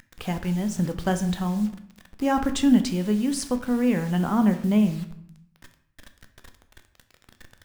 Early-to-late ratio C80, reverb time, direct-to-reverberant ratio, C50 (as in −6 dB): 15.0 dB, 0.70 s, 7.5 dB, 12.0 dB